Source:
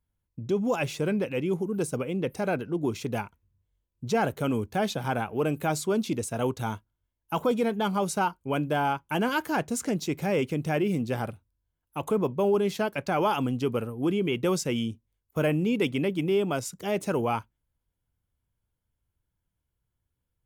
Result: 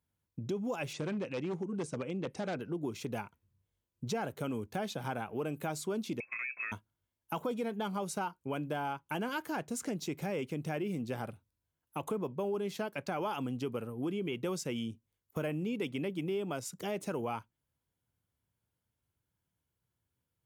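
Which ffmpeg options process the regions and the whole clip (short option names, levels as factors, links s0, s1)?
-filter_complex "[0:a]asettb=1/sr,asplit=3[s0][s1][s2];[s0]atrim=end=0.934[s3];[s1]atrim=start=0.93:end=2.6,asetpts=PTS-STARTPTS,afade=t=in:d=0.004:c=qsin,afade=t=out:st=1.666:d=0.004:c=qsin,bandreject=f=440:w=12,aeval=exprs='0.0794*(abs(mod(val(0)/0.0794+3,4)-2)-1)':c=same,lowpass=f=8000:w=0.5412,lowpass=f=8000:w=1.3066[s4];[s2]atrim=start=2.596[s5];[s3][s4]acrossfade=d=0.004:c1=hsin:c2=qsin[s6];[s6][s5]acrossfade=d=0.004:c1=qsin:c2=hsin,asettb=1/sr,asplit=3[s7][s8][s9];[s7]atrim=end=6.204[s10];[s8]atrim=start=6.2:end=6.72,asetpts=PTS-STARTPTS,afade=t=in:d=0.004:c=qsin,afade=t=out:st=0.516:d=0.004:c=qsin,lowpass=f=2300:t=q:w=0.5098,lowpass=f=2300:t=q:w=0.6013,lowpass=f=2300:t=q:w=0.9,lowpass=f=2300:t=q:w=2.563,afreqshift=-2700,acompressor=threshold=0.0282:ratio=3:attack=3.2:release=140:knee=1:detection=peak[s11];[s9]atrim=start=6.716[s12];[s10][s11]acrossfade=d=0.004:c1=hsin:c2=qsin[s13];[s13][s12]acrossfade=d=0.004:c1=qsin:c2=hsin,highpass=100,acompressor=threshold=0.0141:ratio=2.5"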